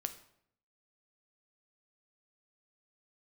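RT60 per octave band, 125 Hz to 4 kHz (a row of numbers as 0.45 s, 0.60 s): 0.85 s, 0.80 s, 0.70 s, 0.65 s, 0.60 s, 0.50 s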